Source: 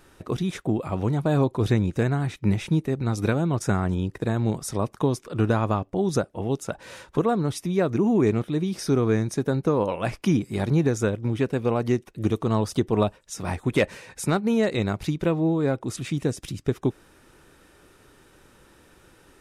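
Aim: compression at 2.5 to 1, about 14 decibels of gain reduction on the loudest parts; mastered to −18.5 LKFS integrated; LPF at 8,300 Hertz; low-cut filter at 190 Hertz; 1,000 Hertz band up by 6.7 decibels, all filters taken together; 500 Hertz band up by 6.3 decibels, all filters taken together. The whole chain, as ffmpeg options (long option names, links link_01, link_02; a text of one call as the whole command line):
ffmpeg -i in.wav -af "highpass=190,lowpass=8300,equalizer=frequency=500:width_type=o:gain=6.5,equalizer=frequency=1000:width_type=o:gain=6.5,acompressor=threshold=-35dB:ratio=2.5,volume=16dB" out.wav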